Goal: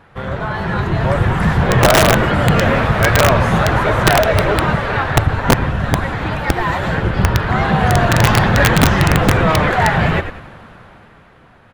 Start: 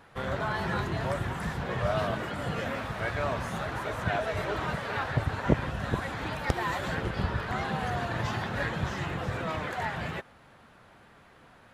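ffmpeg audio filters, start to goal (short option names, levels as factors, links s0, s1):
-filter_complex "[0:a]equalizer=f=260:w=7.1:g=-3,dynaudnorm=f=140:g=17:m=3.98,bass=f=250:g=4,treble=f=4000:g=-8,acontrast=84,asplit=2[s0][s1];[s1]asplit=4[s2][s3][s4][s5];[s2]adelay=96,afreqshift=-75,volume=0.299[s6];[s3]adelay=192,afreqshift=-150,volume=0.119[s7];[s4]adelay=288,afreqshift=-225,volume=0.0479[s8];[s5]adelay=384,afreqshift=-300,volume=0.0191[s9];[s6][s7][s8][s9]amix=inputs=4:normalize=0[s10];[s0][s10]amix=inputs=2:normalize=0,aeval=exprs='(mod(1.5*val(0)+1,2)-1)/1.5':c=same"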